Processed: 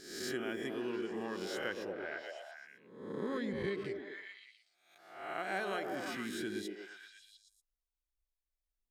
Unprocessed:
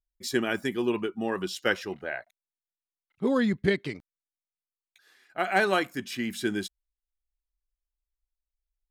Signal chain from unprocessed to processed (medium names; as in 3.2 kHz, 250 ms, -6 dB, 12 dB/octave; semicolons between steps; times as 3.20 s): reverse spectral sustain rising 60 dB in 0.72 s; repeats whose band climbs or falls 117 ms, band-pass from 330 Hz, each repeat 0.7 oct, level -1 dB; compression 2:1, threshold -33 dBFS, peak gain reduction 9.5 dB; trim -7.5 dB